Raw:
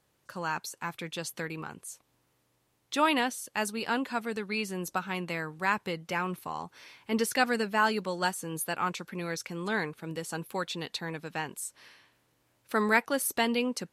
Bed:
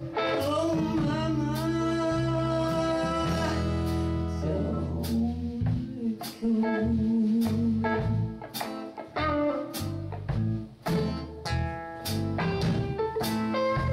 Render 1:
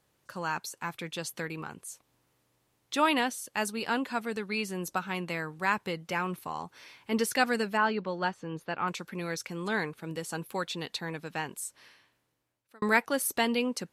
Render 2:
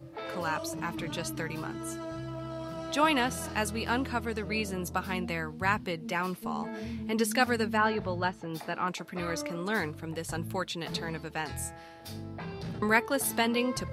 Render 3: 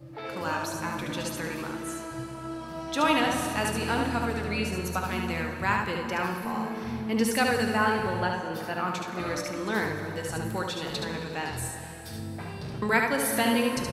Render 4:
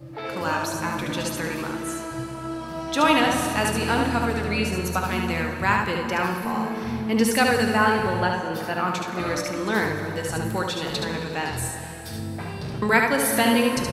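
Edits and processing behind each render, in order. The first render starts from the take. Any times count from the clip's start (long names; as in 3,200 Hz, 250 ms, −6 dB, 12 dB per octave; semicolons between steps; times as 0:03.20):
0:07.77–0:08.88: high-frequency loss of the air 220 metres; 0:11.62–0:12.82: fade out
mix in bed −11.5 dB
single-tap delay 73 ms −4 dB; dense smooth reverb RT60 3.2 s, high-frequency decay 0.8×, DRR 5 dB
level +5 dB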